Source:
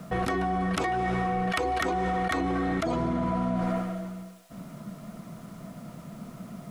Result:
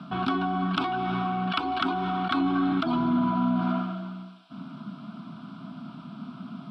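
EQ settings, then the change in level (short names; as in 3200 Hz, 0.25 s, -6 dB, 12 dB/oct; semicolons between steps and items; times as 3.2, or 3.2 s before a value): speaker cabinet 170–6000 Hz, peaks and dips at 260 Hz +10 dB, 1500 Hz +6 dB, 3300 Hz +4 dB; fixed phaser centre 1900 Hz, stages 6; +3.0 dB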